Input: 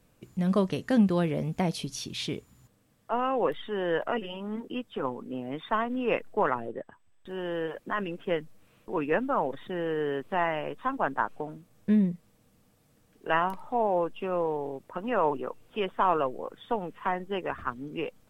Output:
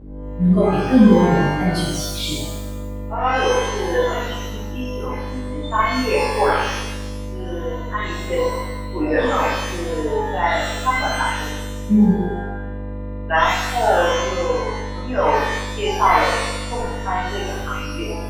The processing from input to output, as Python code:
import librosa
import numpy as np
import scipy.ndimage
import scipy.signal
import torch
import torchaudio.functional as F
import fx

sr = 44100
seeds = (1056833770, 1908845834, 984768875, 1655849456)

y = fx.bin_expand(x, sr, power=2.0)
y = fx.dmg_buzz(y, sr, base_hz=50.0, harmonics=10, level_db=-45.0, tilt_db=-6, odd_only=False)
y = fx.rev_shimmer(y, sr, seeds[0], rt60_s=1.0, semitones=12, shimmer_db=-8, drr_db=-9.5)
y = y * librosa.db_to_amplitude(3.5)